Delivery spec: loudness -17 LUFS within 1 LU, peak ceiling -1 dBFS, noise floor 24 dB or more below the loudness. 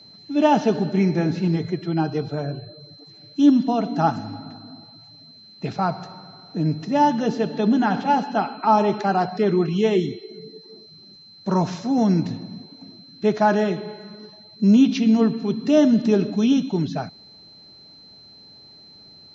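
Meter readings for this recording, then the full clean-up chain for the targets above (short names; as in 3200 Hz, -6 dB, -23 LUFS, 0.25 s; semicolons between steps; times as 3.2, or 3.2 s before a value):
steady tone 4100 Hz; tone level -45 dBFS; loudness -21.0 LUFS; peak -5.5 dBFS; loudness target -17.0 LUFS
-> notch 4100 Hz, Q 30; gain +4 dB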